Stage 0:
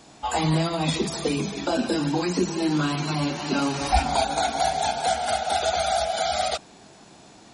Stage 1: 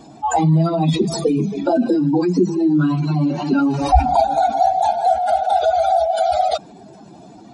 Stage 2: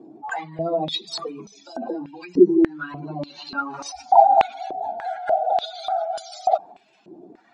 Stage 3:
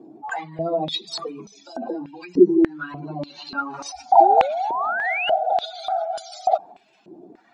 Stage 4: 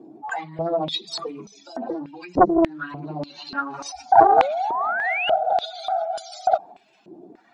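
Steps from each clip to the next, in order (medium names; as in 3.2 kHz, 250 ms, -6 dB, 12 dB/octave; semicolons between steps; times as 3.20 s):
spectral contrast enhancement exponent 2; trim +8 dB
step-sequenced band-pass 3.4 Hz 360–5800 Hz; trim +5 dB
painted sound rise, 4.20–5.30 s, 330–3000 Hz -25 dBFS
loudspeaker Doppler distortion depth 0.83 ms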